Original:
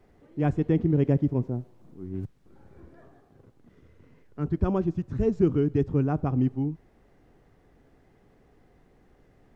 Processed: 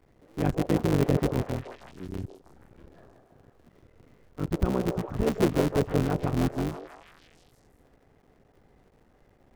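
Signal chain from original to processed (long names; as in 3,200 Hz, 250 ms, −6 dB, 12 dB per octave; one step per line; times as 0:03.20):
sub-harmonics by changed cycles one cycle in 3, muted
echo through a band-pass that steps 160 ms, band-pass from 570 Hz, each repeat 0.7 octaves, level −3.5 dB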